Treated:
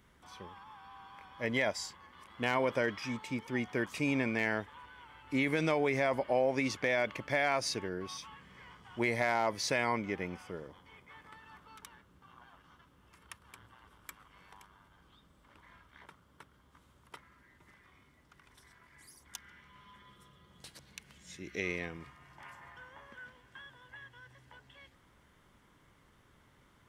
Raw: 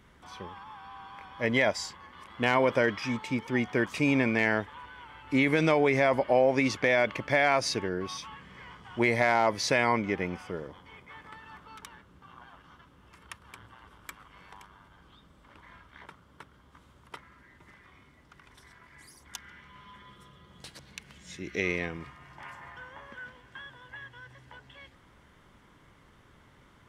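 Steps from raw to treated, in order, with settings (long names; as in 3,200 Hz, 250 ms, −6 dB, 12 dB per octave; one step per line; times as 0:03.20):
high-shelf EQ 8,000 Hz +8 dB
level −6.5 dB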